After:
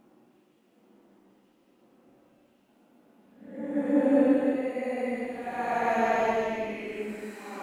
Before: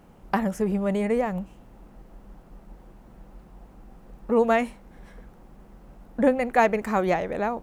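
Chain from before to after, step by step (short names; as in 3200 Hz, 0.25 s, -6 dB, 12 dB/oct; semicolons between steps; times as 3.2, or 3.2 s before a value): LFO high-pass square 5.4 Hz 280–2800 Hz; Paulstretch 5.4×, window 0.25 s, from 5.49; gain -8 dB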